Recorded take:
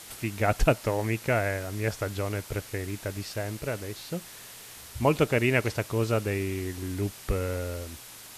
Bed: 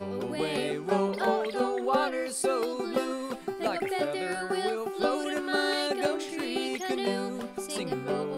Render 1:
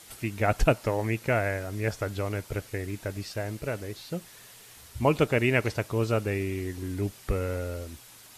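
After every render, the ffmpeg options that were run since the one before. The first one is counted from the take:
-af "afftdn=nr=6:nf=-46"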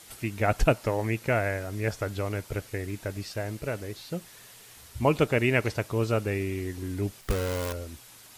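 -filter_complex "[0:a]asettb=1/sr,asplit=3[a][b][c];[a]atrim=end=7.214[d];[b]atrim=start=7.21:end=7.73,asetpts=PTS-STARTPTS,afade=t=in:d=0.004:c=qsin,afade=t=out:st=0.516:d=0.004:c=qsin,acrusher=bits=6:dc=4:mix=0:aa=0.000001[e];[c]atrim=start=7.726[f];[d][e]acrossfade=d=0.004:c1=hsin:c2=qsin[g];[g][f]acrossfade=d=0.004:c1=qsin:c2=hsin"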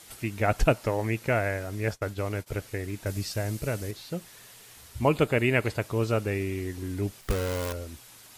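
-filter_complex "[0:a]asplit=3[a][b][c];[a]afade=t=out:st=1.75:d=0.02[d];[b]agate=range=-33dB:threshold=-33dB:ratio=3:release=100:detection=peak,afade=t=in:st=1.75:d=0.02,afade=t=out:st=2.46:d=0.02[e];[c]afade=t=in:st=2.46:d=0.02[f];[d][e][f]amix=inputs=3:normalize=0,asettb=1/sr,asplit=3[g][h][i];[g]atrim=end=3.064[j];[h]atrim=start=3.06:end=3.91,asetpts=PTS-STARTPTS,afade=t=in:d=0.004:c=qsin,afade=t=out:st=0.846:d=0.004:c=qsin,bass=f=250:g=5,treble=f=4k:g=7[k];[i]atrim=start=3.906[l];[j][k]acrossfade=d=0.004:c1=hsin:c2=qsin[m];[m][l]acrossfade=d=0.004:c1=qsin:c2=hsin,asettb=1/sr,asplit=3[n][o][p];[n]atrim=end=5.084[q];[o]atrim=start=5.08:end=5.82,asetpts=PTS-STARTPTS,afade=t=in:d=0.004:c=qsin,afade=t=out:st=0.736:d=0.004:c=qsin,equalizer=f=5.7k:w=8:g=-12.5[r];[p]atrim=start=5.816[s];[q][r]acrossfade=d=0.004:c1=hsin:c2=qsin[t];[t][s]acrossfade=d=0.004:c1=qsin:c2=hsin"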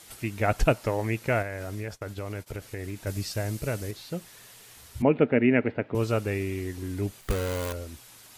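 -filter_complex "[0:a]asettb=1/sr,asplit=3[a][b][c];[a]atrim=end=1.424[d];[b]atrim=start=1.42:end=3.07,asetpts=PTS-STARTPTS,afade=t=in:d=0.004:c=qsin,afade=t=out:st=1.646:d=0.004:c=qsin,acompressor=threshold=-30dB:ratio=6:attack=3.2:release=140:knee=1:detection=peak[e];[c]atrim=start=3.066[f];[d][e]acrossfade=d=0.004:c1=hsin:c2=qsin[g];[g][f]acrossfade=d=0.004:c1=qsin:c2=hsin,asettb=1/sr,asplit=3[h][i][j];[h]atrim=end=5.024[k];[i]atrim=start=5.02:end=5.95,asetpts=PTS-STARTPTS,afade=t=in:d=0.004:c=qsin,afade=t=out:st=0.926:d=0.004:c=qsin,highpass=140,equalizer=f=250:t=q:w=4:g=10,equalizer=f=460:t=q:w=4:g=3,equalizer=f=1.1k:t=q:w=4:g=-9,lowpass=f=2.4k:w=0.5412,lowpass=f=2.4k:w=1.3066[l];[j]atrim=start=5.946[m];[k][l]acrossfade=d=0.004:c1=hsin:c2=qsin[n];[n][m]acrossfade=d=0.004:c1=qsin:c2=hsin,asettb=1/sr,asplit=3[o][p][q];[o]atrim=end=7.064[r];[p]atrim=start=7.06:end=7.76,asetpts=PTS-STARTPTS,afade=t=in:d=0.004:c=qsin,afade=t=out:st=0.696:d=0.004:c=qsin,bandreject=f=5.3k:w=12[s];[q]atrim=start=7.756[t];[r][s]acrossfade=d=0.004:c1=hsin:c2=qsin[u];[u][t]acrossfade=d=0.004:c1=qsin:c2=hsin"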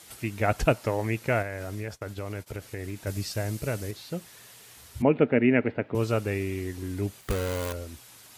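-af "highpass=47"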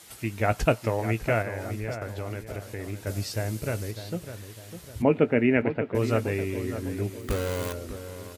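-filter_complex "[0:a]asplit=2[a][b];[b]adelay=18,volume=-13.5dB[c];[a][c]amix=inputs=2:normalize=0,asplit=2[d][e];[e]adelay=602,lowpass=f=2k:p=1,volume=-10.5dB,asplit=2[f][g];[g]adelay=602,lowpass=f=2k:p=1,volume=0.48,asplit=2[h][i];[i]adelay=602,lowpass=f=2k:p=1,volume=0.48,asplit=2[j][k];[k]adelay=602,lowpass=f=2k:p=1,volume=0.48,asplit=2[l][m];[m]adelay=602,lowpass=f=2k:p=1,volume=0.48[n];[f][h][j][l][n]amix=inputs=5:normalize=0[o];[d][o]amix=inputs=2:normalize=0"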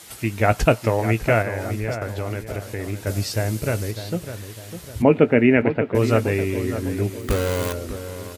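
-af "volume=6.5dB,alimiter=limit=-2dB:level=0:latency=1"

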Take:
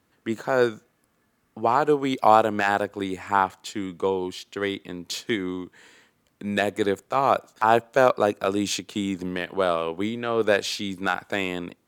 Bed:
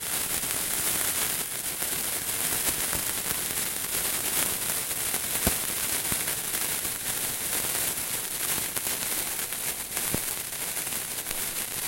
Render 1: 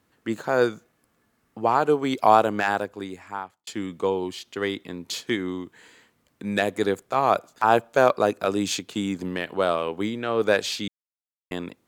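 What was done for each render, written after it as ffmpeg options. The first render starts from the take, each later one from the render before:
-filter_complex "[0:a]asplit=4[a][b][c][d];[a]atrim=end=3.67,asetpts=PTS-STARTPTS,afade=t=out:st=2.51:d=1.16[e];[b]atrim=start=3.67:end=10.88,asetpts=PTS-STARTPTS,afade=t=in:d=0.004:c=hsin,afade=t=out:st=7.206:d=0.004:c=hsin[f];[c]atrim=start=10.88:end=11.51,asetpts=PTS-STARTPTS,volume=0[g];[d]atrim=start=11.51,asetpts=PTS-STARTPTS,afade=t=in:d=0.004:c=hsin[h];[e][f][g][h]concat=n=4:v=0:a=1"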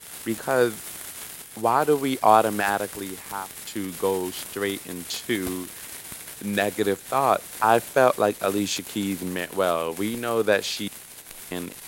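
-filter_complex "[1:a]volume=-10.5dB[a];[0:a][a]amix=inputs=2:normalize=0"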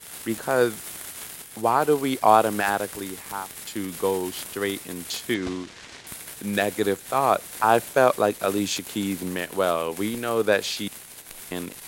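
-filter_complex "[0:a]asettb=1/sr,asplit=3[a][b][c];[a]atrim=end=5.344[d];[b]atrim=start=5.34:end=6.07,asetpts=PTS-STARTPTS,afade=t=in:d=0.004:c=qsin,afade=t=out:st=0.726:d=0.004:c=qsin,lowpass=f=6.3k:w=0.5412,lowpass=f=6.3k:w=1.3066[e];[c]atrim=start=6.066[f];[d][e]acrossfade=d=0.004:c1=hsin:c2=qsin[g];[g][f]acrossfade=d=0.004:c1=qsin:c2=hsin"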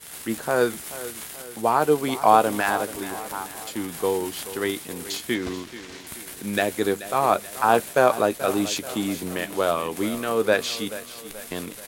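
-filter_complex "[0:a]asplit=2[a][b];[b]adelay=13,volume=-11.5dB[c];[a][c]amix=inputs=2:normalize=0,aecho=1:1:432|864|1296|1728|2160:0.178|0.0889|0.0445|0.0222|0.0111"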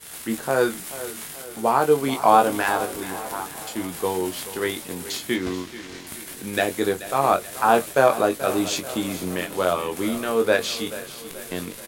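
-filter_complex "[0:a]asplit=2[a][b];[b]adelay=22,volume=-6.5dB[c];[a][c]amix=inputs=2:normalize=0,asplit=6[d][e][f][g][h][i];[e]adelay=494,afreqshift=-39,volume=-23dB[j];[f]adelay=988,afreqshift=-78,volume=-26.7dB[k];[g]adelay=1482,afreqshift=-117,volume=-30.5dB[l];[h]adelay=1976,afreqshift=-156,volume=-34.2dB[m];[i]adelay=2470,afreqshift=-195,volume=-38dB[n];[d][j][k][l][m][n]amix=inputs=6:normalize=0"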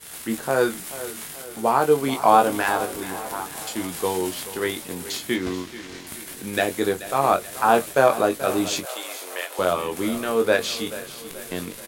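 -filter_complex "[0:a]asettb=1/sr,asplit=3[a][b][c];[a]atrim=end=3.524[d];[b]atrim=start=3.52:end=4.34,asetpts=PTS-STARTPTS,afade=t=in:d=0.004:c=qsin,afade=t=out:st=0.816:d=0.004:c=qsin,equalizer=f=5.7k:w=0.42:g=3.5[e];[c]atrim=start=4.336[f];[d][e]acrossfade=d=0.004:c1=hsin:c2=qsin[g];[g][f]acrossfade=d=0.004:c1=qsin:c2=hsin,asettb=1/sr,asplit=3[h][i][j];[h]atrim=end=8.854[k];[i]atrim=start=8.85:end=9.59,asetpts=PTS-STARTPTS,afade=t=in:d=0.004:c=qsin,afade=t=out:st=0.736:d=0.004:c=qsin,highpass=f=520:w=0.5412,highpass=f=520:w=1.3066[l];[j]atrim=start=9.586[m];[k][l]acrossfade=d=0.004:c1=hsin:c2=qsin[n];[n][m]acrossfade=d=0.004:c1=qsin:c2=hsin"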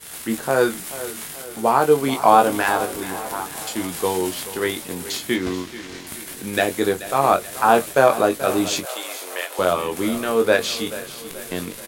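-af "volume=2.5dB,alimiter=limit=-1dB:level=0:latency=1"

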